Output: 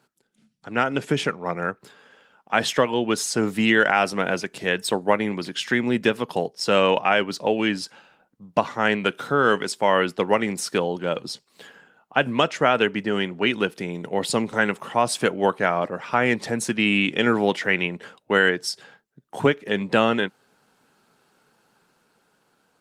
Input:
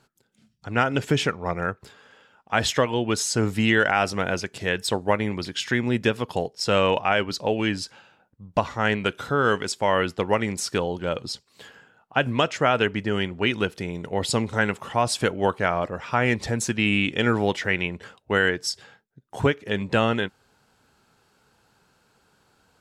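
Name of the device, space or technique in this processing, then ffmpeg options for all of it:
video call: -af "highpass=f=150:w=0.5412,highpass=f=150:w=1.3066,dynaudnorm=f=330:g=9:m=3.5dB" -ar 48000 -c:a libopus -b:a 32k

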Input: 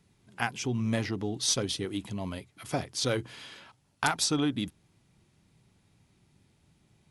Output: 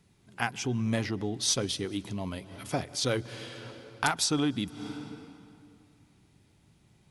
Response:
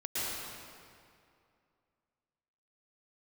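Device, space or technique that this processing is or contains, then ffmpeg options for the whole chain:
ducked reverb: -filter_complex "[0:a]asplit=3[a][b][c];[1:a]atrim=start_sample=2205[d];[b][d]afir=irnorm=-1:irlink=0[e];[c]apad=whole_len=313329[f];[e][f]sidechaincompress=threshold=-49dB:ratio=6:attack=12:release=155,volume=-11.5dB[g];[a][g]amix=inputs=2:normalize=0"

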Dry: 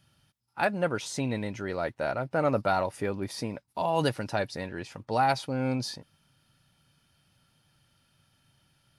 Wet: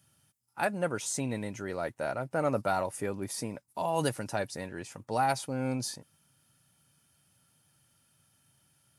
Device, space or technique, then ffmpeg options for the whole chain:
budget condenser microphone: -af "highpass=76,highshelf=f=5.8k:t=q:w=1.5:g=8.5,volume=-3dB"

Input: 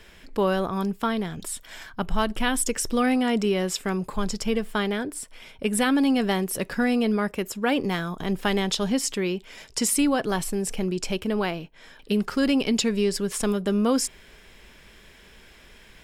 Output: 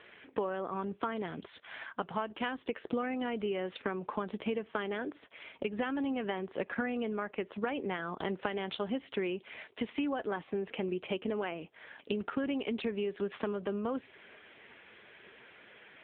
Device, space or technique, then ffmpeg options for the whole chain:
voicemail: -af "highpass=300,lowpass=3.2k,acompressor=threshold=-32dB:ratio=12,volume=2.5dB" -ar 8000 -c:a libopencore_amrnb -b:a 6700

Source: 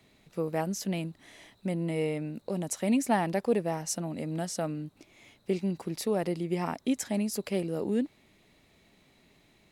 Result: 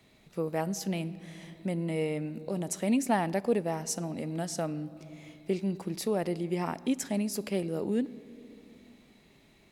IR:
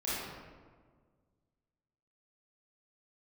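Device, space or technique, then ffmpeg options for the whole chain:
ducked reverb: -filter_complex "[0:a]asplit=3[a][b][c];[1:a]atrim=start_sample=2205[d];[b][d]afir=irnorm=-1:irlink=0[e];[c]apad=whole_len=428498[f];[e][f]sidechaincompress=threshold=-40dB:ratio=4:attack=7.6:release=622,volume=-11dB[g];[a][g]amix=inputs=2:normalize=0,volume=-1dB"

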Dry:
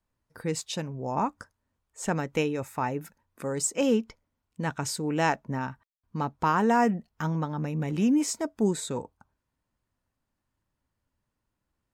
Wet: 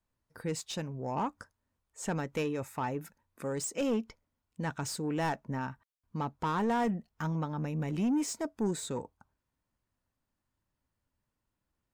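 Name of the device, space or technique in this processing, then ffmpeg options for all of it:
saturation between pre-emphasis and de-emphasis: -af "highshelf=f=2.2k:g=9,asoftclip=type=tanh:threshold=-21dB,highshelf=f=2.2k:g=-9,volume=-3dB"

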